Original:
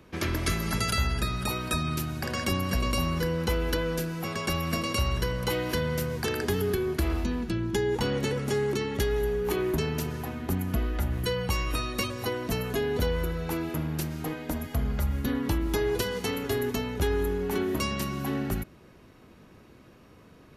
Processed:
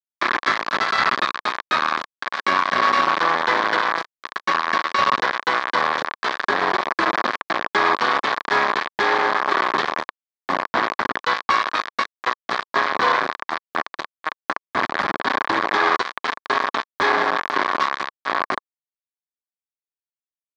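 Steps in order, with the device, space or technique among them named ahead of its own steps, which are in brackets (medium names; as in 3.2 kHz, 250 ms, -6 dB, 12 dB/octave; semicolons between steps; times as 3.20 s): hand-held game console (bit crusher 4-bit; cabinet simulation 440–4000 Hz, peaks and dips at 470 Hz -5 dB, 1.1 kHz +10 dB, 1.7 kHz +6 dB, 2.8 kHz -9 dB); trim +8 dB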